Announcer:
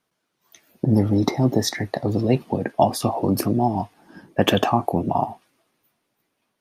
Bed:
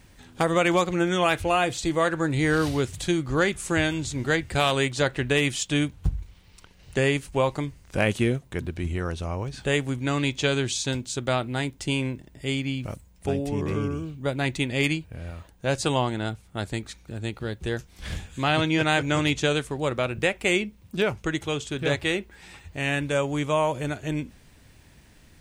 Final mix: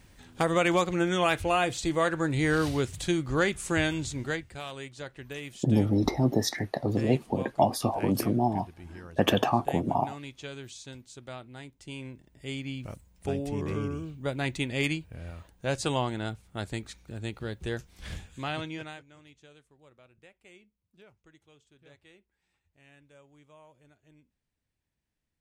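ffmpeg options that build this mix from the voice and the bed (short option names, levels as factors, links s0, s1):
-filter_complex "[0:a]adelay=4800,volume=0.531[s0];[1:a]volume=2.99,afade=t=out:st=4.04:d=0.51:silence=0.199526,afade=t=in:st=11.8:d=1.49:silence=0.237137,afade=t=out:st=17.91:d=1.14:silence=0.0421697[s1];[s0][s1]amix=inputs=2:normalize=0"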